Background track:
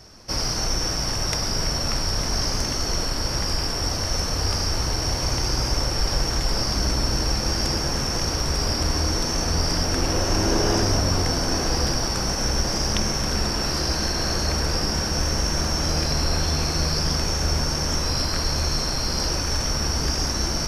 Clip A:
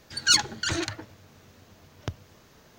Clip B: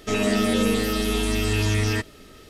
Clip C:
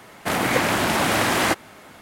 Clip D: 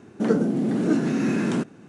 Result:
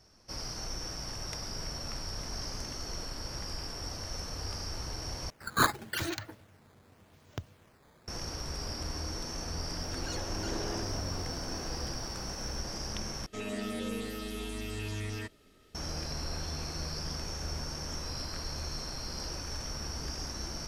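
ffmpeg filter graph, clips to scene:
ffmpeg -i bed.wav -i cue0.wav -i cue1.wav -filter_complex "[1:a]asplit=2[link_01][link_02];[0:a]volume=-14.5dB[link_03];[link_01]acrusher=samples=9:mix=1:aa=0.000001:lfo=1:lforange=14.4:lforate=0.86[link_04];[link_02]acompressor=threshold=-45dB:ratio=3:attack=0.14:release=45:knee=1:detection=peak[link_05];[link_03]asplit=3[link_06][link_07][link_08];[link_06]atrim=end=5.304[link_09];[link_04]atrim=end=2.78,asetpts=PTS-STARTPTS,volume=-6dB[link_10];[link_07]atrim=start=8.076:end=13.264[link_11];[2:a]atrim=end=2.49,asetpts=PTS-STARTPTS,volume=-15dB[link_12];[link_08]atrim=start=15.746[link_13];[link_05]atrim=end=2.78,asetpts=PTS-STARTPTS,volume=-2dB,afade=type=in:duration=0.004:curve=hsin,afade=type=out:start_time=2.776:duration=0.004:curve=hsin,adelay=9800[link_14];[link_09][link_10]acrossfade=duration=0.004:curve1=hsin:curve2=hsin[link_15];[link_15][link_11]acrossfade=duration=0.004:curve1=hsin:curve2=hsin[link_16];[link_16][link_12]acrossfade=duration=0.004:curve1=hsin:curve2=hsin[link_17];[link_17][link_13]acrossfade=duration=0.004:curve1=hsin:curve2=hsin[link_18];[link_18][link_14]amix=inputs=2:normalize=0" out.wav

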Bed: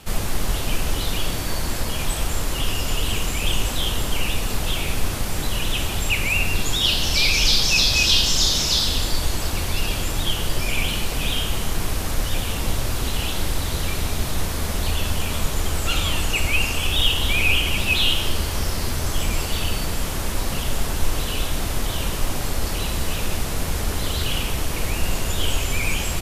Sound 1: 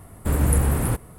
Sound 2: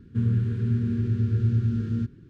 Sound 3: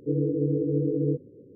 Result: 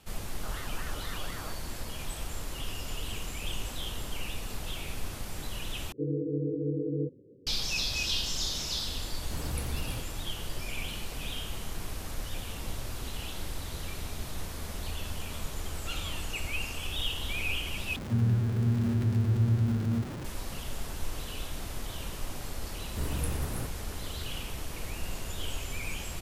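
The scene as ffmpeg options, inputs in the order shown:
ffmpeg -i bed.wav -i cue0.wav -i cue1.wav -i cue2.wav -filter_complex "[3:a]asplit=2[link_01][link_02];[1:a]asplit=2[link_03][link_04];[0:a]volume=-13.5dB[link_05];[link_01]aeval=exprs='val(0)*sin(2*PI*1300*n/s+1300*0.3/4.1*sin(2*PI*4.1*n/s))':channel_layout=same[link_06];[2:a]aeval=exprs='val(0)+0.5*0.0335*sgn(val(0))':channel_layout=same[link_07];[link_05]asplit=3[link_08][link_09][link_10];[link_08]atrim=end=5.924[link_11];[link_02]atrim=end=1.55,asetpts=PTS-STARTPTS,volume=-6dB[link_12];[link_09]atrim=start=7.466:end=17.964[link_13];[link_07]atrim=end=2.29,asetpts=PTS-STARTPTS,volume=-4dB[link_14];[link_10]atrim=start=20.246[link_15];[link_06]atrim=end=1.55,asetpts=PTS-STARTPTS,volume=-17.5dB,afade=type=in:duration=0.004:curve=hsin,afade=type=out:start_time=1.546:duration=0.004:curve=hsin,adelay=360[link_16];[link_03]atrim=end=1.18,asetpts=PTS-STARTPTS,volume=-16.5dB,afade=type=in:duration=0.004:curve=hsin,afade=type=out:start_time=1.176:duration=0.004:curve=hsin,adelay=9050[link_17];[link_04]atrim=end=1.18,asetpts=PTS-STARTPTS,volume=-13.5dB,afade=type=in:duration=0.004:curve=hsin,afade=type=out:start_time=1.176:duration=0.004:curve=hsin,adelay=22710[link_18];[link_11][link_12]acrossfade=duration=0.004:curve1=hsin:curve2=hsin[link_19];[link_19][link_13]acrossfade=duration=0.004:curve1=hsin:curve2=hsin[link_20];[link_20][link_14]acrossfade=duration=0.004:curve1=hsin:curve2=hsin[link_21];[link_21][link_15]acrossfade=duration=0.004:curve1=hsin:curve2=hsin[link_22];[link_22][link_16][link_17][link_18]amix=inputs=4:normalize=0" out.wav

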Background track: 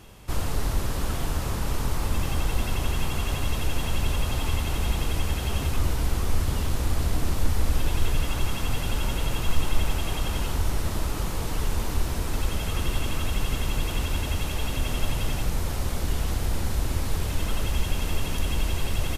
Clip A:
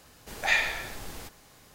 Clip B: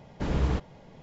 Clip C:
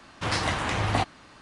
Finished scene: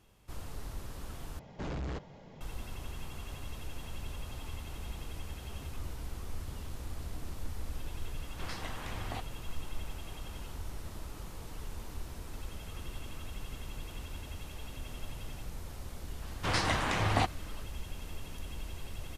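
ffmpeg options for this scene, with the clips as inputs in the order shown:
ffmpeg -i bed.wav -i cue0.wav -i cue1.wav -i cue2.wav -filter_complex "[3:a]asplit=2[link_01][link_02];[0:a]volume=-16dB[link_03];[2:a]asoftclip=type=tanh:threshold=-33dB[link_04];[link_03]asplit=2[link_05][link_06];[link_05]atrim=end=1.394[link_07];[link_04]atrim=end=1.02,asetpts=PTS-STARTPTS,volume=-1.5dB[link_08];[link_06]atrim=start=2.406[link_09];[link_01]atrim=end=1.41,asetpts=PTS-STARTPTS,volume=-16dB,afade=type=in:duration=0.004:curve=hsin,afade=type=out:start_time=1.406:duration=0.004:curve=hsin,adelay=8170[link_10];[link_02]atrim=end=1.41,asetpts=PTS-STARTPTS,volume=-3.5dB,afade=type=in:duration=0.004:curve=hsin,afade=type=out:start_time=1.406:duration=0.004:curve=hsin,adelay=16220[link_11];[link_07][link_08]acrossfade=duration=0.004:curve1=hsin:curve2=hsin[link_12];[link_12][link_09]acrossfade=duration=0.004:curve1=hsin:curve2=hsin[link_13];[link_13][link_10][link_11]amix=inputs=3:normalize=0" out.wav

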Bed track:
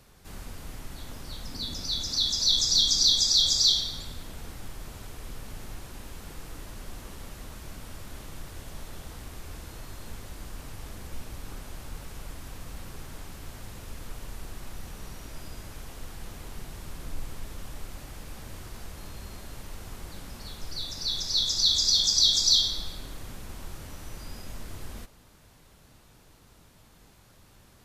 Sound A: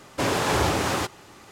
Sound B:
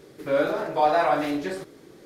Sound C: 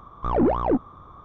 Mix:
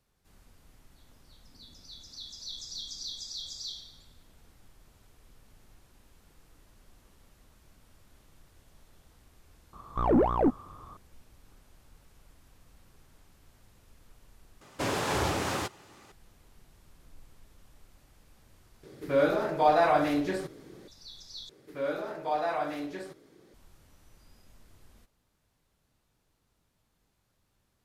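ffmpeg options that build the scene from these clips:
ffmpeg -i bed.wav -i cue0.wav -i cue1.wav -i cue2.wav -filter_complex "[2:a]asplit=2[link_01][link_02];[0:a]volume=-18dB[link_03];[link_01]lowshelf=frequency=150:gain=8.5[link_04];[link_03]asplit=4[link_05][link_06][link_07][link_08];[link_05]atrim=end=14.614[link_09];[1:a]atrim=end=1.51,asetpts=PTS-STARTPTS,volume=-6.5dB[link_10];[link_06]atrim=start=16.116:end=18.834[link_11];[link_04]atrim=end=2.05,asetpts=PTS-STARTPTS,volume=-2.5dB[link_12];[link_07]atrim=start=20.876:end=21.494[link_13];[link_02]atrim=end=2.05,asetpts=PTS-STARTPTS,volume=-9.5dB[link_14];[link_08]atrim=start=23.536[link_15];[3:a]atrim=end=1.24,asetpts=PTS-STARTPTS,volume=-3dB,afade=type=in:duration=0.004:curve=hsin,afade=type=out:start_time=1.236:duration=0.004:curve=hsin,adelay=9730[link_16];[link_09][link_10]acrossfade=duration=0.004:curve1=hsin:curve2=hsin[link_17];[link_17][link_11]acrossfade=duration=0.004:curve1=hsin:curve2=hsin[link_18];[link_18][link_12]acrossfade=duration=0.004:curve1=hsin:curve2=hsin[link_19];[link_19][link_13]acrossfade=duration=0.004:curve1=hsin:curve2=hsin[link_20];[link_20][link_14]acrossfade=duration=0.004:curve1=hsin:curve2=hsin[link_21];[link_21][link_15]acrossfade=duration=0.004:curve1=hsin:curve2=hsin[link_22];[link_22][link_16]amix=inputs=2:normalize=0" out.wav

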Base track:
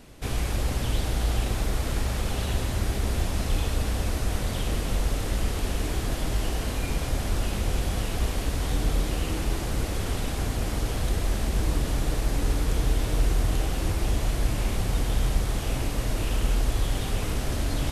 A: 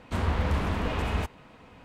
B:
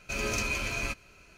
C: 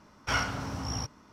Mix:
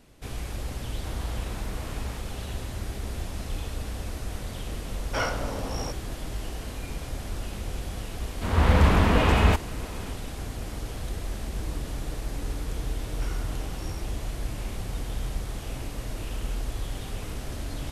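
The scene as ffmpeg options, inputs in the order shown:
ffmpeg -i bed.wav -i cue0.wav -i cue1.wav -i cue2.wav -filter_complex "[1:a]asplit=2[link_01][link_02];[3:a]asplit=2[link_03][link_04];[0:a]volume=-7dB[link_05];[link_03]equalizer=frequency=530:width=1.5:gain=13.5[link_06];[link_02]dynaudnorm=framelen=180:gausssize=3:maxgain=13.5dB[link_07];[link_04]acompressor=threshold=-34dB:ratio=6:attack=3.2:release=140:knee=1:detection=peak[link_08];[link_01]atrim=end=1.84,asetpts=PTS-STARTPTS,volume=-12.5dB,afade=type=in:duration=0.004:curve=hsin,afade=type=out:start_time=1.836:duration=0.004:curve=hsin,adelay=920[link_09];[link_06]atrim=end=1.32,asetpts=PTS-STARTPTS,volume=-2dB,afade=type=in:duration=0.004:curve=hsin,afade=type=out:start_time=1.316:duration=0.004:curve=hsin,adelay=4860[link_10];[link_07]atrim=end=1.84,asetpts=PTS-STARTPTS,volume=-3.5dB,afade=type=in:duration=0.004:curve=hsin,afade=type=out:start_time=1.836:duration=0.004:curve=hsin,adelay=8300[link_11];[link_08]atrim=end=1.32,asetpts=PTS-STARTPTS,volume=-7dB,afade=type=in:duration=0.004:curve=hsin,afade=type=out:start_time=1.316:duration=0.004:curve=hsin,adelay=12940[link_12];[link_05][link_09][link_10][link_11][link_12]amix=inputs=5:normalize=0" out.wav

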